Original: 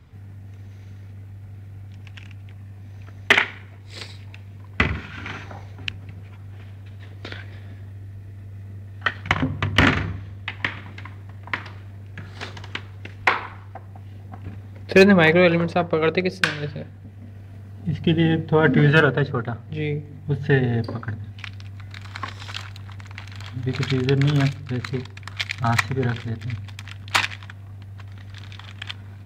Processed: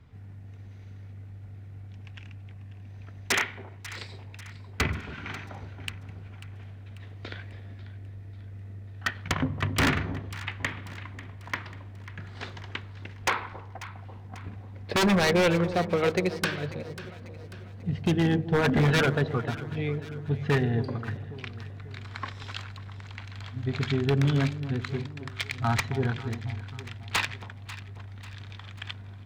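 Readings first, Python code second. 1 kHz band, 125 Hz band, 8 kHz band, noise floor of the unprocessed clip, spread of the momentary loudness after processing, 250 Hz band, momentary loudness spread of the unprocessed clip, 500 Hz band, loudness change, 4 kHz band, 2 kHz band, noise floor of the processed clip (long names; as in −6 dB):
−5.5 dB, −5.0 dB, +1.0 dB, −40 dBFS, 20 LU, −6.0 dB, 23 LU, −7.0 dB, −7.0 dB, −5.5 dB, −8.0 dB, −44 dBFS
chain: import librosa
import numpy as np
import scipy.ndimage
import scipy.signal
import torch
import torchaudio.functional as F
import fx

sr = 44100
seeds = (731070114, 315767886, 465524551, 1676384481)

p1 = fx.high_shelf(x, sr, hz=8200.0, db=-10.0)
p2 = 10.0 ** (-12.0 / 20.0) * (np.abs((p1 / 10.0 ** (-12.0 / 20.0) + 3.0) % 4.0 - 2.0) - 1.0)
p3 = p2 + fx.echo_alternate(p2, sr, ms=271, hz=850.0, feedback_pct=68, wet_db=-12, dry=0)
y = p3 * librosa.db_to_amplitude(-4.5)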